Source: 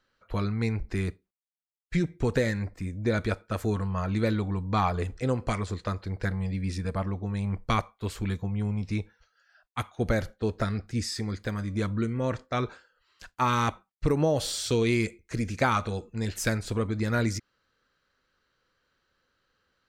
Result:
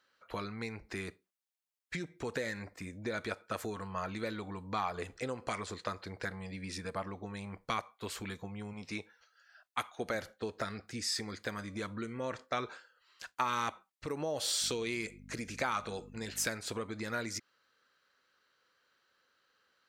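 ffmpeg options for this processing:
-filter_complex "[0:a]asettb=1/sr,asplit=3[s0][s1][s2];[s0]atrim=end=8.734[s3];[s1]atrim=start=8.73:end=10.15,asetpts=PTS-STARTPTS,afade=t=in:d=0.004:c=qsin,afade=t=out:st=1.416:d=0.004:c=qsin,lowshelf=f=120:g=-10[s4];[s2]atrim=start=10.146[s5];[s3][s4]acrossfade=d=0.004:c1=hsin:c2=qsin[s6];[s6][s5]acrossfade=d=0.004:c1=qsin:c2=hsin,asettb=1/sr,asplit=3[s7][s8][s9];[s7]atrim=end=14.624[s10];[s8]atrim=start=14.62:end=16.48,asetpts=PTS-STARTPTS,afade=t=in:d=0.004:c=qsin,afade=t=out:st=1.856:d=0.004:c=qsin,aeval=exprs='val(0)+0.0141*(sin(2*PI*50*n/s)+sin(2*PI*2*50*n/s)/2+sin(2*PI*3*50*n/s)/3+sin(2*PI*4*50*n/s)/4+sin(2*PI*5*50*n/s)/5)':c=same[s11];[s9]atrim=start=16.476[s12];[s10][s11]acrossfade=d=0.004:c1=hsin:c2=qsin[s13];[s13][s12]acrossfade=d=0.004:c1=qsin:c2=hsin,acompressor=threshold=0.0355:ratio=6,highpass=f=580:p=1,volume=1.19"

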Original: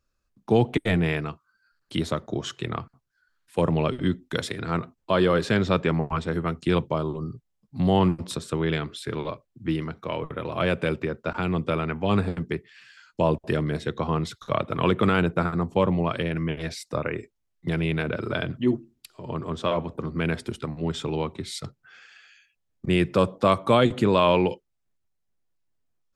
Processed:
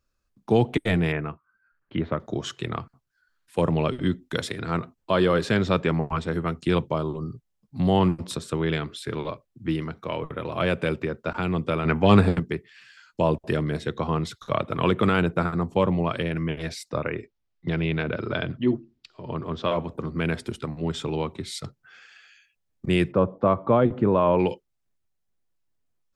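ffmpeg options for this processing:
-filter_complex "[0:a]asettb=1/sr,asplit=3[s0][s1][s2];[s0]atrim=end=1.124[s3];[s1]atrim=start=1.12:end=2.2,asetpts=PTS-STARTPTS,afade=t=in:d=0.004:c=qsin,afade=t=out:st=1.076:d=0.004:c=qsin,lowpass=f=2400:w=0.5412,lowpass=f=2400:w=1.3066[s4];[s2]atrim=start=2.196[s5];[s3][s4]acrossfade=d=0.004:c1=hsin:c2=qsin[s6];[s6][s5]acrossfade=d=0.004:c1=qsin:c2=hsin,asettb=1/sr,asplit=3[s7][s8][s9];[s7]atrim=end=11.854[s10];[s8]atrim=start=11.85:end=12.4,asetpts=PTS-STARTPTS,afade=t=in:d=0.004:c=qsin,afade=t=out:st=0.546:d=0.004:c=qsin,acontrast=83[s11];[s9]atrim=start=12.396[s12];[s10][s11]acrossfade=d=0.004:c1=hsin:c2=qsin[s13];[s13][s12]acrossfade=d=0.004:c1=qsin:c2=hsin,asettb=1/sr,asplit=3[s14][s15][s16];[s14]atrim=end=16.904[s17];[s15]atrim=start=16.9:end=19.71,asetpts=PTS-STARTPTS,afade=t=in:d=0.004:c=qsin,afade=t=out:st=2.806:d=0.004:c=qsin,lowpass=f=5400:w=0.5412,lowpass=f=5400:w=1.3066[s18];[s16]atrim=start=19.706[s19];[s17][s18]acrossfade=d=0.004:c1=hsin:c2=qsin[s20];[s20][s19]acrossfade=d=0.004:c1=qsin:c2=hsin,asplit=3[s21][s22][s23];[s21]afade=t=out:st=23.11:d=0.02[s24];[s22]lowpass=1200,afade=t=in:st=23.11:d=0.02,afade=t=out:st=24.38:d=0.02[s25];[s23]afade=t=in:st=24.38:d=0.02[s26];[s24][s25][s26]amix=inputs=3:normalize=0"

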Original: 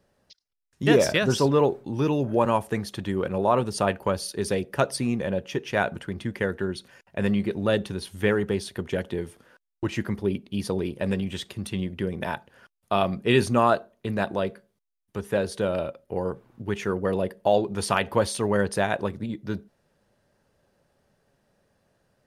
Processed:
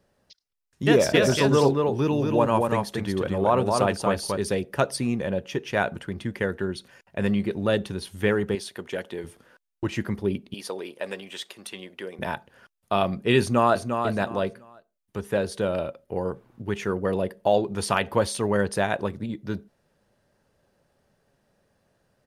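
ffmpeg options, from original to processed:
-filter_complex "[0:a]asplit=3[s0][s1][s2];[s0]afade=t=out:st=1.13:d=0.02[s3];[s1]aecho=1:1:231:0.668,afade=t=in:st=1.13:d=0.02,afade=t=out:st=4.36:d=0.02[s4];[s2]afade=t=in:st=4.36:d=0.02[s5];[s3][s4][s5]amix=inputs=3:normalize=0,asettb=1/sr,asplit=3[s6][s7][s8];[s6]atrim=end=8.554[s9];[s7]atrim=start=8.55:end=9.24,asetpts=PTS-STARTPTS,afade=t=in:d=0.004:c=qsin,afade=t=out:st=0.686:d=0.004:c=qsin,highpass=f=450:p=1[s10];[s8]atrim=start=9.236[s11];[s9][s10]acrossfade=d=0.004:c1=hsin:c2=qsin[s12];[s12][s11]acrossfade=d=0.004:c1=qsin:c2=hsin,asettb=1/sr,asplit=3[s13][s14][s15];[s13]atrim=end=10.544[s16];[s14]atrim=start=10.54:end=12.19,asetpts=PTS-STARTPTS,afade=t=in:d=0.004:c=qsin,afade=t=out:st=1.646:d=0.004:c=qsin,highpass=510[s17];[s15]atrim=start=12.186[s18];[s16][s17]acrossfade=d=0.004:c1=hsin:c2=qsin[s19];[s19][s18]acrossfade=d=0.004:c1=qsin:c2=hsin,asplit=2[s20][s21];[s21]afade=t=in:st=13.4:d=0.01,afade=t=out:st=13.92:d=0.01,aecho=0:1:350|700|1050:0.473151|0.118288|0.029572[s22];[s20][s22]amix=inputs=2:normalize=0"

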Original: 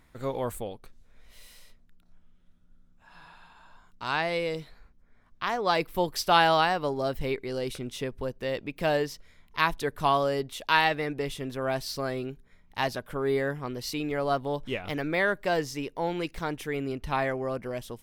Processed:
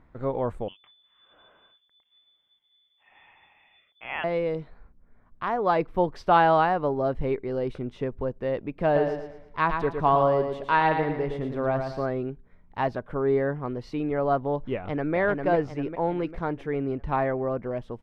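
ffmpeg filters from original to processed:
-filter_complex "[0:a]asettb=1/sr,asplit=3[s0][s1][s2];[s0]atrim=end=0.684[s3];[s1]atrim=start=0.68:end=4.24,asetpts=PTS-STARTPTS,afade=t=in:d=0.004:c=qsin,afade=t=out:st=3.556:d=0.004:c=qsin,lowpass=f=3000:t=q:w=0.5098,lowpass=f=3000:t=q:w=0.6013,lowpass=f=3000:t=q:w=0.9,lowpass=f=3000:t=q:w=2.563,afreqshift=-3500[s4];[s2]atrim=start=4.236[s5];[s3][s4]acrossfade=d=0.004:c1=hsin:c2=qsin[s6];[s6][s5]acrossfade=d=0.004:c1=qsin:c2=hsin,asettb=1/sr,asplit=3[s7][s8][s9];[s7]atrim=end=8.844[s10];[s8]atrim=start=8.84:end=12.06,asetpts=PTS-STARTPTS,afade=t=in:d=0.004:c=qsin,afade=t=out:st=3.216:d=0.004:c=qsin,aecho=1:1:113|226|339|452|565:0.501|0.19|0.0724|0.0275|0.0105,atrim=end_sample=142002[s11];[s9]atrim=start=12.056[s12];[s10][s11]acrossfade=d=0.004:c1=hsin:c2=qsin[s13];[s13][s12]acrossfade=d=0.004:c1=qsin:c2=hsin,asplit=2[s14][s15];[s15]afade=t=in:st=14.75:d=0.01,afade=t=out:st=15.15:d=0.01,aecho=0:1:400|800|1200|1600|2000|2400:0.630957|0.315479|0.157739|0.0788697|0.0394348|0.0197174[s16];[s14][s16]amix=inputs=2:normalize=0,lowpass=1200,aemphasis=mode=production:type=cd,volume=1.58"

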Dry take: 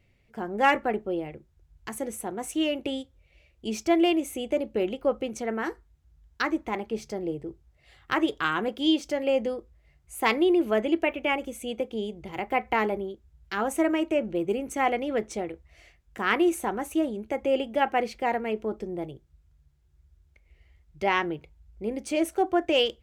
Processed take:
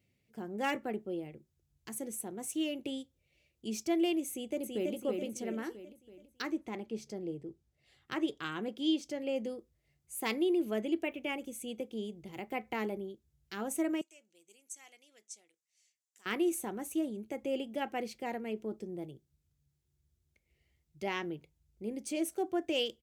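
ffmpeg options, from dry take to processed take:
-filter_complex "[0:a]asplit=2[s0][s1];[s1]afade=t=in:st=4.3:d=0.01,afade=t=out:st=4.93:d=0.01,aecho=0:1:330|660|990|1320|1650|1980|2310:0.707946|0.353973|0.176986|0.0884932|0.0442466|0.0221233|0.0110617[s2];[s0][s2]amix=inputs=2:normalize=0,asettb=1/sr,asplit=3[s3][s4][s5];[s3]atrim=end=6.524[s6];[s4]atrim=start=6.52:end=9.36,asetpts=PTS-STARTPTS,afade=t=in:d=0.004:c=qsin,afade=t=out:st=2.836:d=0.004:c=qsin,highshelf=f=9800:g=-11[s7];[s5]atrim=start=9.356[s8];[s6][s7]acrossfade=d=0.004:c1=hsin:c2=qsin[s9];[s9][s8]acrossfade=d=0.004:c1=qsin:c2=hsin,asettb=1/sr,asplit=3[s10][s11][s12];[s10]atrim=end=14.014[s13];[s11]atrim=start=14.01:end=16.26,asetpts=PTS-STARTPTS,afade=t=in:d=0.004:c=qsin,afade=t=out:st=2.246:d=0.004:c=qsin,bandpass=f=7100:t=q:w=1.8[s14];[s12]atrim=start=16.256[s15];[s13][s14]acrossfade=d=0.004:c1=hsin:c2=qsin[s16];[s16][s15]acrossfade=d=0.004:c1=qsin:c2=hsin,highpass=170,equalizer=f=1100:w=0.34:g=-14.5"

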